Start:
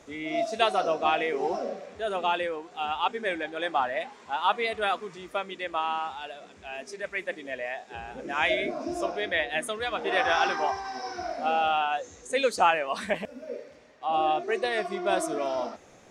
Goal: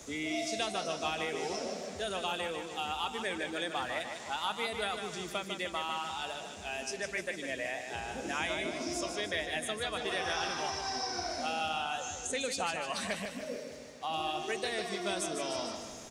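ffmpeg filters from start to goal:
-filter_complex "[0:a]bass=f=250:g=5,treble=f=4k:g=14,acrossover=split=210|1600|7500[a][b][c][d];[a]acompressor=threshold=-49dB:ratio=4[e];[b]acompressor=threshold=-38dB:ratio=4[f];[c]acompressor=threshold=-38dB:ratio=4[g];[d]acompressor=threshold=-55dB:ratio=4[h];[e][f][g][h]amix=inputs=4:normalize=0,aecho=1:1:151|302|453|604|755|906:0.447|0.232|0.121|0.0628|0.0327|0.017"

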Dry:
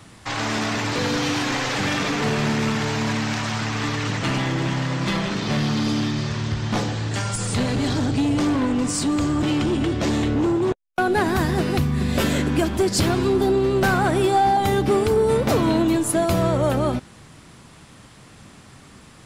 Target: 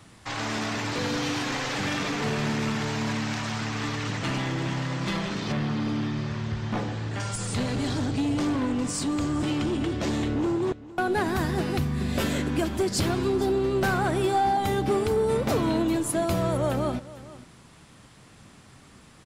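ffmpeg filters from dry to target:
-filter_complex "[0:a]asplit=2[a][b];[b]aecho=0:1:457:0.126[c];[a][c]amix=inputs=2:normalize=0,asettb=1/sr,asplit=3[d][e][f];[d]atrim=end=5.524[g];[e]atrim=start=5.52:end=7.2,asetpts=PTS-STARTPTS,afade=t=in:d=0.004:c=qsin,afade=t=out:st=1.676:d=0.004:c=qsin,acrossover=split=2900[h][i];[i]acompressor=threshold=-44dB:ratio=4:attack=1:release=60[j];[h][j]amix=inputs=2:normalize=0[k];[f]atrim=start=7.196[l];[g][k]acrossfade=d=0.004:c1=hsin:c2=qsin[m];[m][l]acrossfade=d=0.004:c1=qsin:c2=hsin,volume=-5.5dB"

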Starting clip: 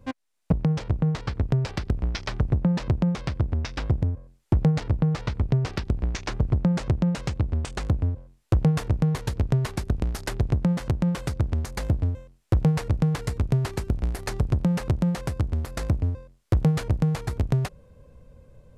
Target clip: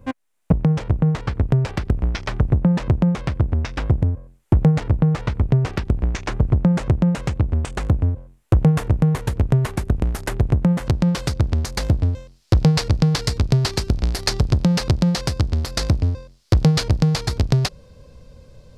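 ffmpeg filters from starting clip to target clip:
-af "asetnsamples=n=441:p=0,asendcmd='10.87 equalizer g 7.5;12.13 equalizer g 14',equalizer=f=4.7k:w=1.2:g=-6,volume=5.5dB"

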